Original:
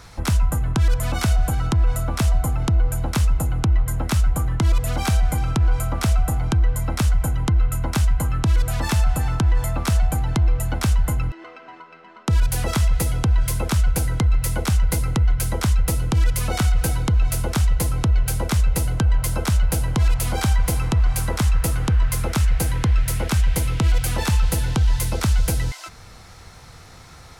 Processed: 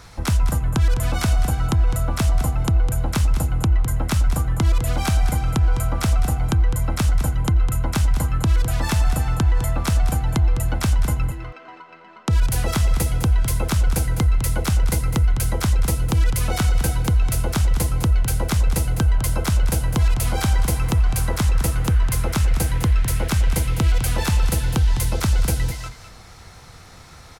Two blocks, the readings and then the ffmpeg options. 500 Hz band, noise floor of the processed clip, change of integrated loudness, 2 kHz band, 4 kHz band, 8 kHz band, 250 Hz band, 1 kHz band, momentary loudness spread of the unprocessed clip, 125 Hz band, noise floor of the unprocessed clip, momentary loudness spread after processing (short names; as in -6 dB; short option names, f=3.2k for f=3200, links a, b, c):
+0.5 dB, -43 dBFS, +0.5 dB, +0.5 dB, +0.5 dB, +0.5 dB, +0.5 dB, +0.5 dB, 2 LU, +0.5 dB, -44 dBFS, 1 LU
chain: -af "aecho=1:1:206:0.299"